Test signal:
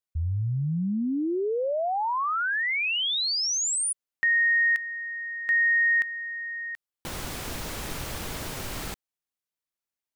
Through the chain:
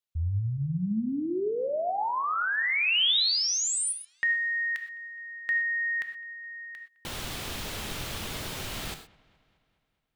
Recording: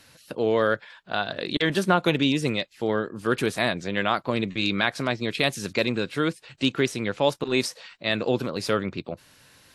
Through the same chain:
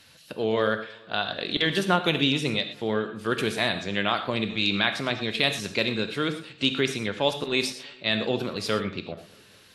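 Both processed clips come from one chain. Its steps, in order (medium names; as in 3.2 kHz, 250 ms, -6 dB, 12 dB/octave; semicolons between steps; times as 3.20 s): peaking EQ 3.3 kHz +6 dB 1 oct; on a send: feedback echo behind a low-pass 210 ms, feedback 58%, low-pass 3.1 kHz, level -24 dB; on the sum: gated-style reverb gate 140 ms flat, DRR 7.5 dB; trim -3 dB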